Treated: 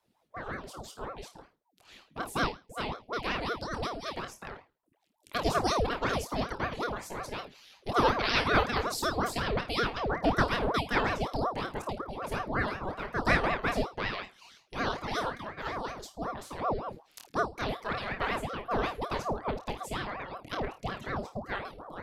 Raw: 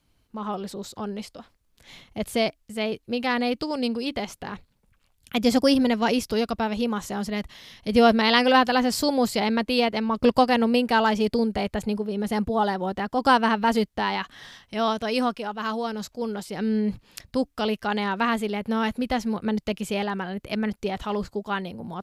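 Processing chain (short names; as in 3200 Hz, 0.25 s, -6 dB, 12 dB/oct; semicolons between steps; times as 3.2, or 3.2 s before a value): reverb removal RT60 0.87 s; flutter echo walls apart 4.6 m, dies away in 0.28 s; ring modulator with a swept carrier 570 Hz, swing 70%, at 5.4 Hz; gain -5 dB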